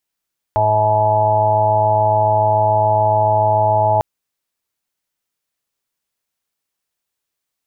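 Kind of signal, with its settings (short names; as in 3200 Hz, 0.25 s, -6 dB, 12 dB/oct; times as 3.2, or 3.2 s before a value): steady additive tone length 3.45 s, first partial 107 Hz, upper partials -18/-17/-12/-14/4/-13/5.5/-7 dB, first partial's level -20 dB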